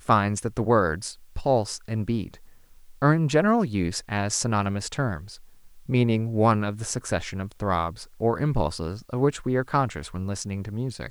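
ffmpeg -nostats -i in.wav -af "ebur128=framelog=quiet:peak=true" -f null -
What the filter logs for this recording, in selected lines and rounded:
Integrated loudness:
  I:         -25.5 LUFS
  Threshold: -35.9 LUFS
Loudness range:
  LRA:         1.9 LU
  Threshold: -45.8 LUFS
  LRA low:   -27.0 LUFS
  LRA high:  -25.0 LUFS
True peak:
  Peak:       -5.5 dBFS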